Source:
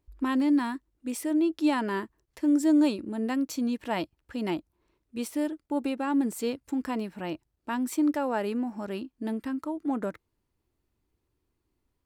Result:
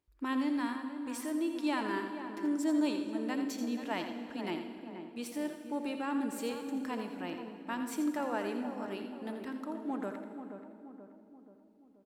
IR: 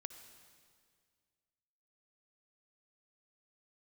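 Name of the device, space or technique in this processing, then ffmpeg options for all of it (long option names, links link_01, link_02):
PA in a hall: -filter_complex "[0:a]highpass=frequency=150:poles=1,equalizer=frequency=2400:width_type=o:width=3:gain=4,aecho=1:1:84:0.355[link_01];[1:a]atrim=start_sample=2205[link_02];[link_01][link_02]afir=irnorm=-1:irlink=0,asplit=2[link_03][link_04];[link_04]adelay=480,lowpass=frequency=1100:poles=1,volume=-8dB,asplit=2[link_05][link_06];[link_06]adelay=480,lowpass=frequency=1100:poles=1,volume=0.54,asplit=2[link_07][link_08];[link_08]adelay=480,lowpass=frequency=1100:poles=1,volume=0.54,asplit=2[link_09][link_10];[link_10]adelay=480,lowpass=frequency=1100:poles=1,volume=0.54,asplit=2[link_11][link_12];[link_12]adelay=480,lowpass=frequency=1100:poles=1,volume=0.54,asplit=2[link_13][link_14];[link_14]adelay=480,lowpass=frequency=1100:poles=1,volume=0.54[link_15];[link_03][link_05][link_07][link_09][link_11][link_13][link_15]amix=inputs=7:normalize=0,volume=-3.5dB"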